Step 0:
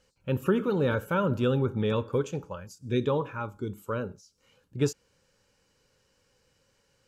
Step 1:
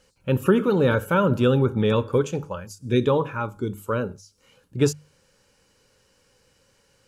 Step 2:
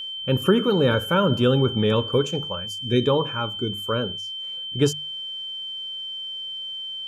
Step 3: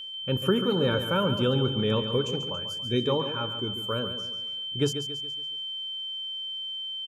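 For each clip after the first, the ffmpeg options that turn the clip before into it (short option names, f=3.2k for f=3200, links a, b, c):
-af "equalizer=f=9.9k:w=3.3:g=6,bandreject=f=50:t=h:w=6,bandreject=f=100:t=h:w=6,bandreject=f=150:t=h:w=6,volume=6.5dB"
-af "aeval=exprs='val(0)+0.0316*sin(2*PI*3100*n/s)':c=same"
-af "aecho=1:1:140|280|420|560|700:0.335|0.147|0.0648|0.0285|0.0126,volume=-6dB"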